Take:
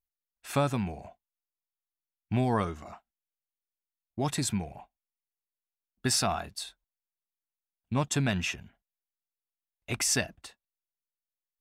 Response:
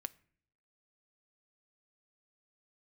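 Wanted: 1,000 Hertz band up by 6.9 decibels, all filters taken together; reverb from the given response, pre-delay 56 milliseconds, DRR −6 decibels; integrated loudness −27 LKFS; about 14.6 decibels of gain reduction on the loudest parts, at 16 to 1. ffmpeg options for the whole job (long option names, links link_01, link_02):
-filter_complex "[0:a]equalizer=frequency=1000:width_type=o:gain=9,acompressor=threshold=-33dB:ratio=16,asplit=2[link_01][link_02];[1:a]atrim=start_sample=2205,adelay=56[link_03];[link_02][link_03]afir=irnorm=-1:irlink=0,volume=9dB[link_04];[link_01][link_04]amix=inputs=2:normalize=0,volume=5.5dB"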